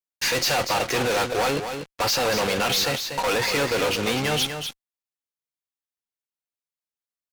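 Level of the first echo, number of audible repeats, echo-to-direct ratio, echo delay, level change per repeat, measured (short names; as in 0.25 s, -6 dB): -7.5 dB, 1, -7.5 dB, 0.241 s, no steady repeat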